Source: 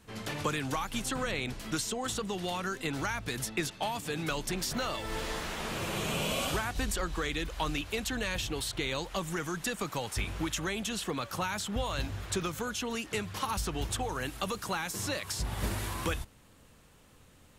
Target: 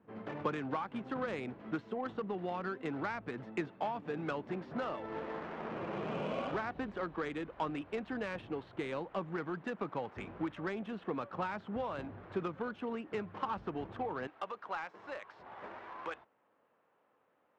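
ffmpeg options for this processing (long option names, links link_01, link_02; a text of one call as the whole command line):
ffmpeg -i in.wav -af "asetnsamples=nb_out_samples=441:pad=0,asendcmd='14.27 highpass f 660',highpass=200,lowpass=3000,adynamicsmooth=sensitivity=1.5:basefreq=1100,volume=-1dB" out.wav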